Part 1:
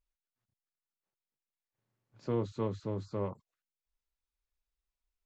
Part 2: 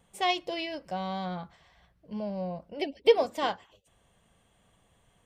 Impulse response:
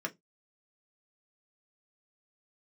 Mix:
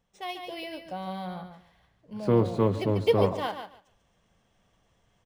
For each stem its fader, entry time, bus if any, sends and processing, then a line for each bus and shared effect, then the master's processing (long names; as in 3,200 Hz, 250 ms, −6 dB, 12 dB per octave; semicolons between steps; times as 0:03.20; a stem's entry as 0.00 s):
+2.5 dB, 0.00 s, no send, echo send −15.5 dB, no processing
−10.0 dB, 0.00 s, no send, echo send −8.5 dB, no processing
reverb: not used
echo: repeating echo 143 ms, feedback 17%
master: automatic gain control gain up to 7.5 dB; linearly interpolated sample-rate reduction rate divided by 3×